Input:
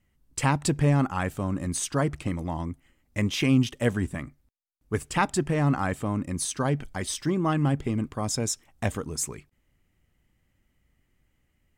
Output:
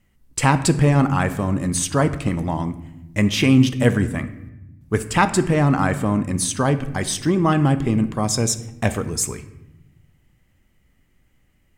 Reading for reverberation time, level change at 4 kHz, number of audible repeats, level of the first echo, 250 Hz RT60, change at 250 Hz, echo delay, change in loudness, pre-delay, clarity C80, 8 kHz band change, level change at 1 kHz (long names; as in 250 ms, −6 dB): 0.95 s, +7.0 dB, no echo audible, no echo audible, 1.7 s, +7.5 dB, no echo audible, +7.5 dB, 4 ms, 16.0 dB, +7.0 dB, +7.5 dB